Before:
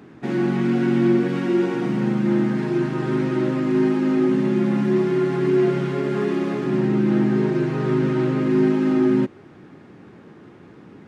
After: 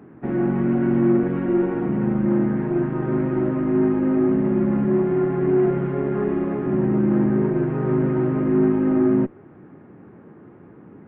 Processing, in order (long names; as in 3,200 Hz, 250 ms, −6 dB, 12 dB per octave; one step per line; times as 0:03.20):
harmonic generator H 6 −26 dB, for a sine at −7.5 dBFS
Gaussian smoothing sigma 4.5 samples